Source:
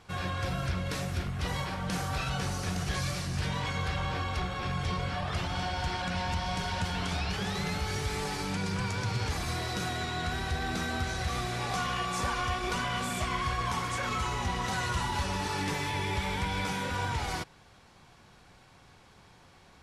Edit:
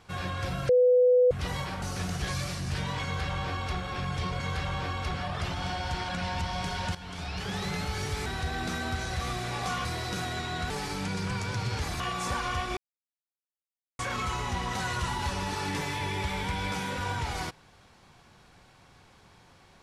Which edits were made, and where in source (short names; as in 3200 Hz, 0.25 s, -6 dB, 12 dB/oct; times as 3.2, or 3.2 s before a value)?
0.69–1.31 bleep 498 Hz -17 dBFS
1.82–2.49 cut
3.71–4.45 copy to 5.07
6.88–7.51 fade in, from -13 dB
8.19–9.49 swap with 10.34–11.93
12.7–13.92 mute